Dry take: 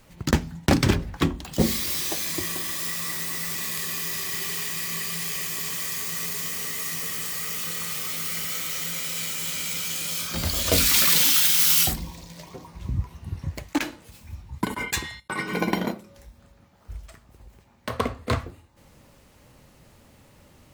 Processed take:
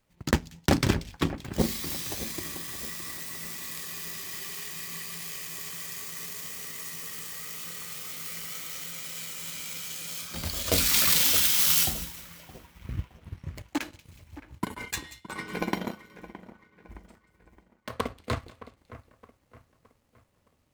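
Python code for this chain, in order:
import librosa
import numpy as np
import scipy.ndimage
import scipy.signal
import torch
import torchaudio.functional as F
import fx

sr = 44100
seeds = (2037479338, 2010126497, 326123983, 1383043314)

y = fx.echo_split(x, sr, split_hz=2400.0, low_ms=617, high_ms=184, feedback_pct=52, wet_db=-11.0)
y = fx.power_curve(y, sr, exponent=1.4)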